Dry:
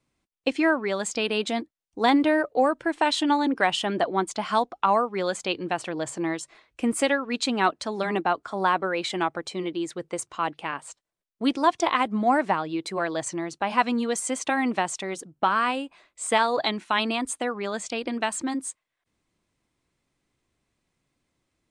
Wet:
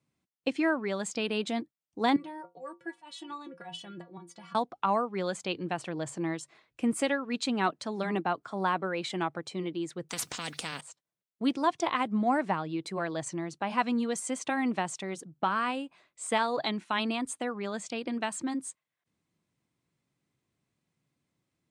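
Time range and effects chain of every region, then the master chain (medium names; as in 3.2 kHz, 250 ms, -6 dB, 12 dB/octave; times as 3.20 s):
2.16–4.55 s: slow attack 127 ms + inharmonic resonator 170 Hz, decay 0.21 s, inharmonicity 0.008
10.09–10.81 s: treble shelf 2.3 kHz +11 dB + comb 4.1 ms, depth 50% + spectrum-flattening compressor 4:1
whole clip: high-pass 86 Hz; peaking EQ 150 Hz +8 dB 1.2 oct; trim -6.5 dB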